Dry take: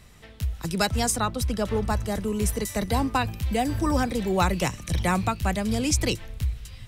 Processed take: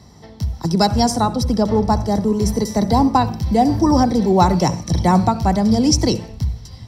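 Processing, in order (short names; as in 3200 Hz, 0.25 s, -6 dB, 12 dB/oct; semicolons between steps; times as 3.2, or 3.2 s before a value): HPF 71 Hz; reverb RT60 0.40 s, pre-delay 58 ms, DRR 14 dB; gain -2.5 dB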